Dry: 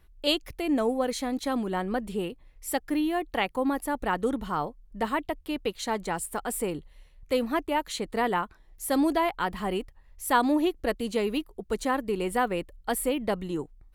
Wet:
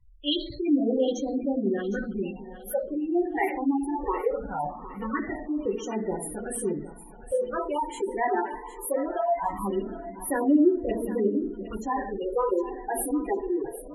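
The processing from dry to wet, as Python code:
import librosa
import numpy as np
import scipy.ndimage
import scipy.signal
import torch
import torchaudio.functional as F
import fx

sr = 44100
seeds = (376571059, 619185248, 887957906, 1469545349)

p1 = fx.rev_double_slope(x, sr, seeds[0], early_s=0.48, late_s=4.2, knee_db=-18, drr_db=-2.5)
p2 = fx.phaser_stages(p1, sr, stages=8, low_hz=160.0, high_hz=1300.0, hz=0.21, feedback_pct=20)
p3 = fx.dynamic_eq(p2, sr, hz=380.0, q=2.5, threshold_db=-41.0, ratio=4.0, max_db=5)
p4 = fx.spec_gate(p3, sr, threshold_db=-15, keep='strong')
p5 = p4 + fx.echo_thinned(p4, sr, ms=760, feedback_pct=29, hz=420.0, wet_db=-14, dry=0)
y = p5 * 10.0 ** (-1.5 / 20.0)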